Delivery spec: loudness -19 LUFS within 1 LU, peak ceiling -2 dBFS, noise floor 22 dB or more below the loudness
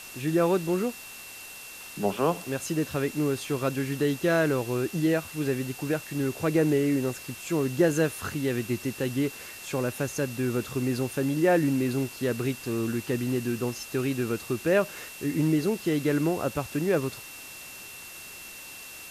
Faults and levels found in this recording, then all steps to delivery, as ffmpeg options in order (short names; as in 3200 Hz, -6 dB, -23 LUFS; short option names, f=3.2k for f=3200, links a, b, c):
steady tone 2700 Hz; tone level -45 dBFS; noise floor -43 dBFS; noise floor target -50 dBFS; loudness -27.5 LUFS; peak -12.0 dBFS; loudness target -19.0 LUFS
-> -af "bandreject=f=2.7k:w=30"
-af "afftdn=nr=7:nf=-43"
-af "volume=8.5dB"